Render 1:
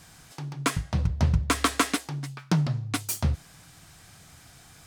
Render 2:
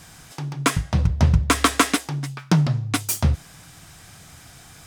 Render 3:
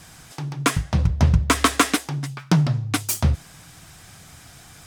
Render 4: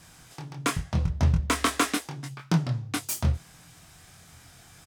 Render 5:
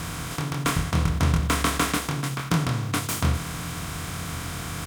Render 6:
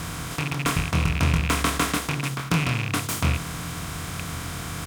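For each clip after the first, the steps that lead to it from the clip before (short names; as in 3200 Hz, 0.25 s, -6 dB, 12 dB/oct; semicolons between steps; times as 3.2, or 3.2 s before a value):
notch 4300 Hz, Q 23; gain +6 dB
vibrato 15 Hz 48 cents
doubler 24 ms -5 dB; gain -7.5 dB
per-bin compression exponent 0.4; gain -2.5 dB
rattling part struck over -26 dBFS, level -17 dBFS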